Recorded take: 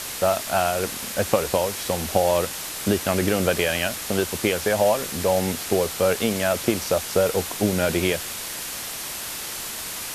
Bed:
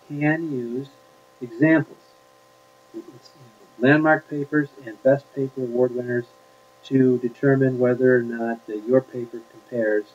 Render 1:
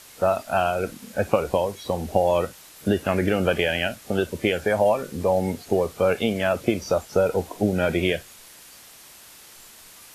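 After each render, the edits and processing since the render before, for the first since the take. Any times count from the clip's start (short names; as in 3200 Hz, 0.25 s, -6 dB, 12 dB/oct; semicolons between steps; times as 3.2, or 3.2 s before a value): noise print and reduce 15 dB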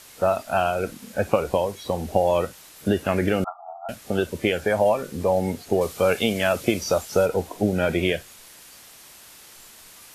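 3.44–3.89 brick-wall FIR band-pass 650–1400 Hz; 5.81–7.26 high shelf 2500 Hz +7.5 dB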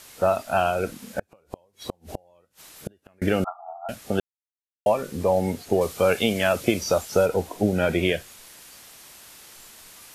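1.19–3.22 flipped gate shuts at -17 dBFS, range -37 dB; 4.2–4.86 mute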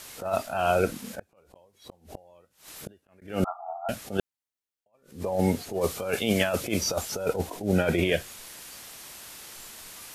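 negative-ratio compressor -23 dBFS, ratio -0.5; attack slew limiter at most 160 dB/s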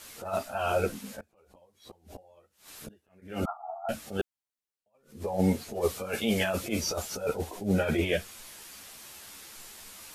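ensemble effect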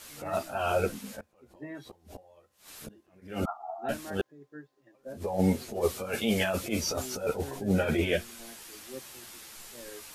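add bed -25.5 dB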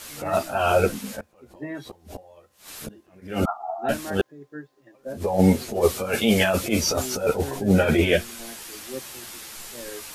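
gain +8 dB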